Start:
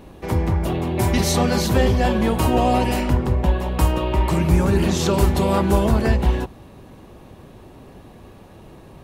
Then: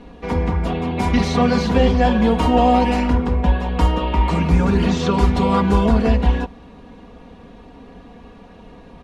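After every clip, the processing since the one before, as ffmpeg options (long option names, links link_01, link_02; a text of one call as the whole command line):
ffmpeg -i in.wav -filter_complex "[0:a]lowpass=4800,aecho=1:1:4.2:0.8,acrossover=split=830|3600[link_01][link_02][link_03];[link_03]alimiter=level_in=3.5dB:limit=-24dB:level=0:latency=1:release=181,volume=-3.5dB[link_04];[link_01][link_02][link_04]amix=inputs=3:normalize=0" out.wav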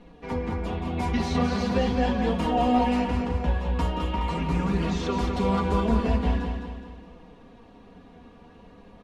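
ffmpeg -i in.wav -filter_complex "[0:a]flanger=delay=5.6:depth=7.6:regen=36:speed=0.42:shape=triangular,asplit=2[link_01][link_02];[link_02]aecho=0:1:209|418|627|836|1045:0.501|0.226|0.101|0.0457|0.0206[link_03];[link_01][link_03]amix=inputs=2:normalize=0,volume=-5dB" out.wav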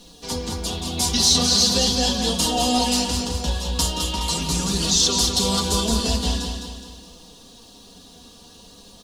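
ffmpeg -i in.wav -af "aexciter=amount=10.2:drive=9.5:freq=3500" out.wav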